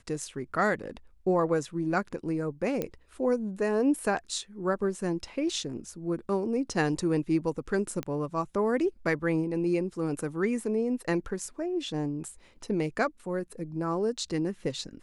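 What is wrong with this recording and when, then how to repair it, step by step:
0:02.82: click −17 dBFS
0:08.03: click −19 dBFS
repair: click removal

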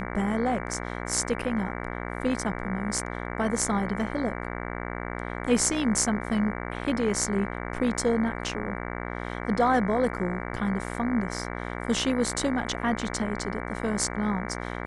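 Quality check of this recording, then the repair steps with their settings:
mains buzz 60 Hz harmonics 38 −34 dBFS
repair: hum removal 60 Hz, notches 38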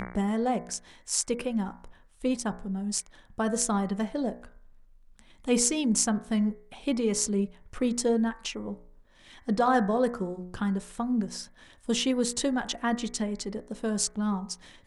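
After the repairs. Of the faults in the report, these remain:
none of them is left

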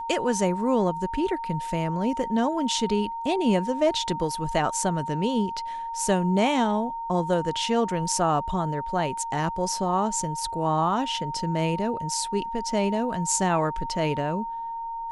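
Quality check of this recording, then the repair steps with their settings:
whistle 920 Hz −30 dBFS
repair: notch filter 920 Hz, Q 30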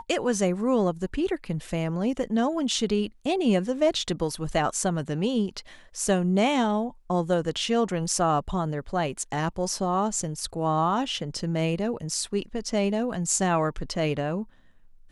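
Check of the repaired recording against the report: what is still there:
none of them is left

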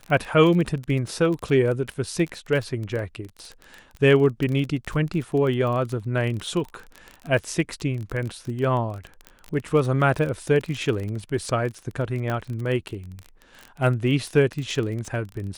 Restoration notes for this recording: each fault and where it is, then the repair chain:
surface crackle 25 per second −28 dBFS
0:12.30: click −15 dBFS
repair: click removal

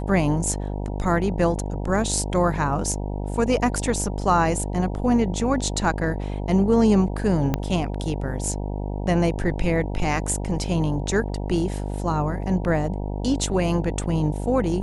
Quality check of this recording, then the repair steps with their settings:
mains buzz 50 Hz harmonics 19 −28 dBFS
0:07.54: click −9 dBFS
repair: click removal
hum removal 50 Hz, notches 19

